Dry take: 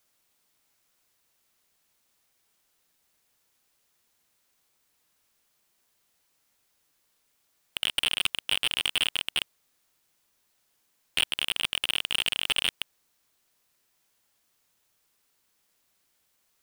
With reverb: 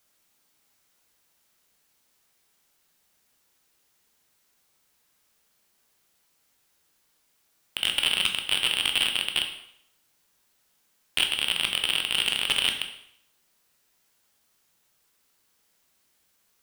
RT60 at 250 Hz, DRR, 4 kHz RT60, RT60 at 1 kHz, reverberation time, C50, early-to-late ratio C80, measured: 0.70 s, 4.0 dB, 0.65 s, 0.70 s, 0.70 s, 8.0 dB, 11.0 dB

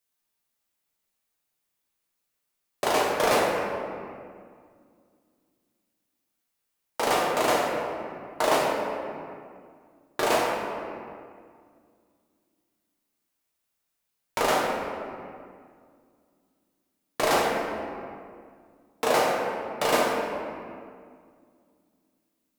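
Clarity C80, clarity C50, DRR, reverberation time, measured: 1.5 dB, 0.0 dB, -4.0 dB, 2.2 s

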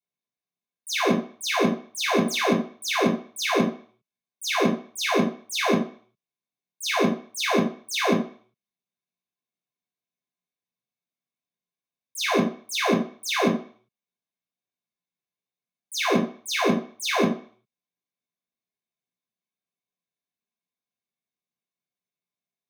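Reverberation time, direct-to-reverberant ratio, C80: 0.45 s, -7.5 dB, 12.5 dB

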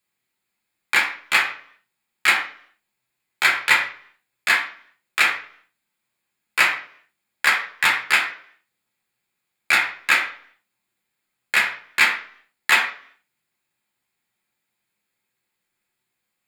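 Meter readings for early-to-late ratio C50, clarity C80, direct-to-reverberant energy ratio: 8.5 dB, 12.0 dB, -2.0 dB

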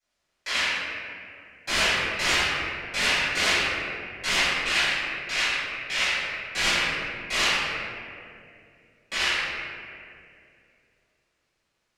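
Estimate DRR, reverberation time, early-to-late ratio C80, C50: -17.5 dB, 2.5 s, -2.5 dB, -5.0 dB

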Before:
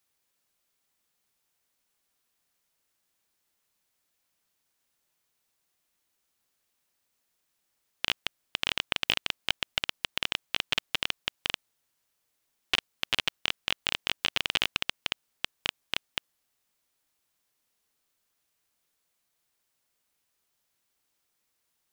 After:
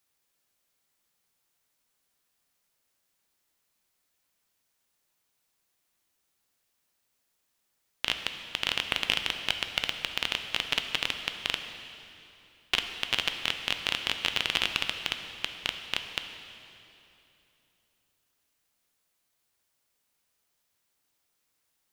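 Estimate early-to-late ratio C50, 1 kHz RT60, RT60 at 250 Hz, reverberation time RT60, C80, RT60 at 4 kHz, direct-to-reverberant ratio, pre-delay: 7.0 dB, 2.8 s, 3.4 s, 3.0 s, 8.0 dB, 2.6 s, 6.0 dB, 7 ms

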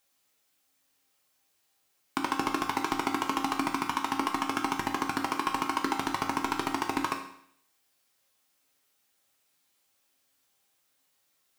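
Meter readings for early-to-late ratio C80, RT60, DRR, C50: 10.0 dB, 0.65 s, 1.5 dB, 7.0 dB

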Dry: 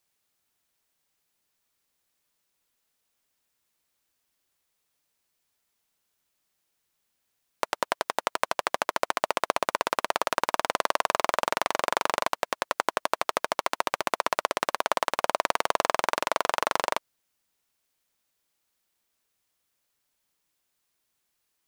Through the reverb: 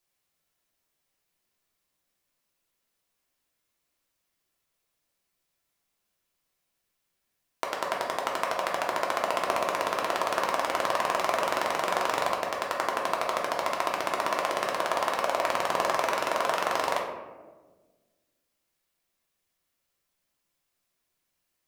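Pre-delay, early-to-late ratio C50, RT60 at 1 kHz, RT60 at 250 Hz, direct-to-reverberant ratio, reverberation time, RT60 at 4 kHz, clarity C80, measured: 3 ms, 4.0 dB, 1.2 s, 2.0 s, -2.0 dB, 1.4 s, 0.60 s, 6.0 dB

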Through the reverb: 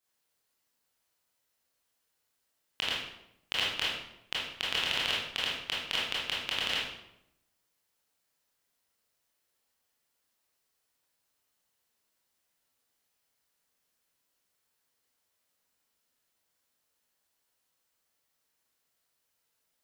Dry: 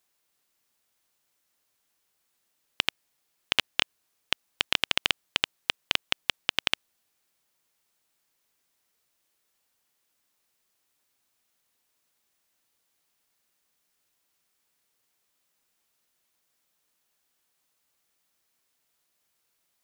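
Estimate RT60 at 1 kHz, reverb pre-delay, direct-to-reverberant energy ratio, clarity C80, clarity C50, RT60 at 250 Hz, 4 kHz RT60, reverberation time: 0.75 s, 20 ms, -7.0 dB, 4.5 dB, 0.0 dB, 1.0 s, 0.60 s, 0.80 s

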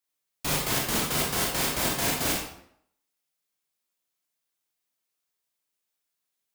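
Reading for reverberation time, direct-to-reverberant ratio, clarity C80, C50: 0.65 s, -2.0 dB, 6.5 dB, 2.0 dB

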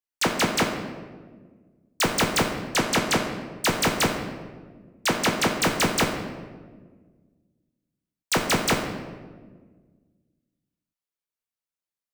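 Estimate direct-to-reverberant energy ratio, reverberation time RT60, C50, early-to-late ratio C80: 1.5 dB, 1.5 s, 5.5 dB, 7.0 dB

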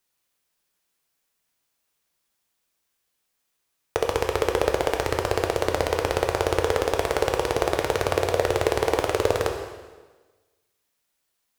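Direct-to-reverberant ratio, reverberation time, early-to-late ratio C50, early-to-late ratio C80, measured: 3.0 dB, 1.3 s, 6.0 dB, 7.5 dB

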